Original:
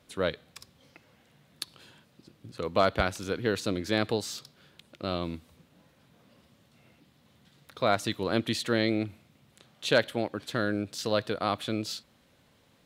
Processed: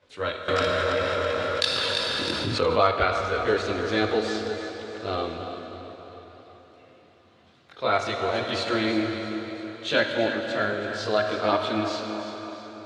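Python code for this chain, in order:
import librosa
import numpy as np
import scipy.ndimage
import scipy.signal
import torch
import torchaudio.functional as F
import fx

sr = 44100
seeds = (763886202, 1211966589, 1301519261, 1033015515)

y = scipy.signal.sosfilt(scipy.signal.butter(2, 110.0, 'highpass', fs=sr, output='sos'), x)
y = fx.peak_eq(y, sr, hz=200.0, db=-8.0, octaves=1.5)
y = fx.chorus_voices(y, sr, voices=6, hz=0.18, base_ms=21, depth_ms=2.3, mix_pct=65)
y = fx.air_absorb(y, sr, metres=120.0)
y = fx.echo_feedback(y, sr, ms=329, feedback_pct=49, wet_db=-11.5)
y = fx.rev_plate(y, sr, seeds[0], rt60_s=4.2, hf_ratio=0.75, predelay_ms=0, drr_db=3.0)
y = fx.env_flatten(y, sr, amount_pct=70, at=(0.48, 2.87))
y = y * 10.0 ** (7.0 / 20.0)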